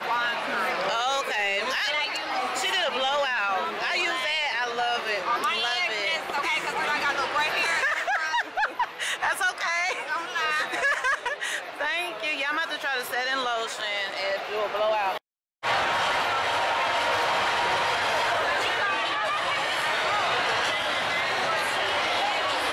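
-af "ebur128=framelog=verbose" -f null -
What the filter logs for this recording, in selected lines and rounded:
Integrated loudness:
  I:         -25.2 LUFS
  Threshold: -35.2 LUFS
Loudness range:
  LRA:         2.8 LU
  Threshold: -45.2 LUFS
  LRA low:   -26.9 LUFS
  LRA high:  -24.1 LUFS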